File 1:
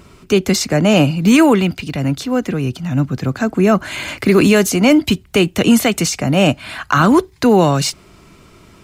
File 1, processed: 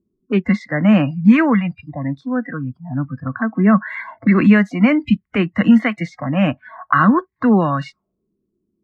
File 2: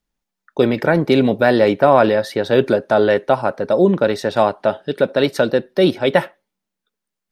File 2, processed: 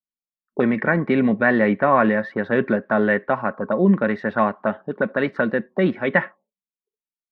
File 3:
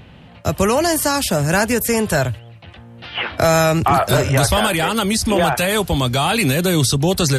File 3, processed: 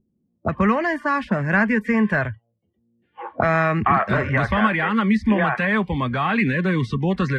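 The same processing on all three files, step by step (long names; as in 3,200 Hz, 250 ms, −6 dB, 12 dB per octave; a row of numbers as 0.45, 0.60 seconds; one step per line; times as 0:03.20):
noise reduction from a noise print of the clip's start 27 dB
hollow resonant body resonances 210/1,100 Hz, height 12 dB, ringing for 60 ms
envelope-controlled low-pass 350–1,900 Hz up, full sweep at −12.5 dBFS
level −8 dB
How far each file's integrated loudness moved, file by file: −2.0, −4.0, −3.5 LU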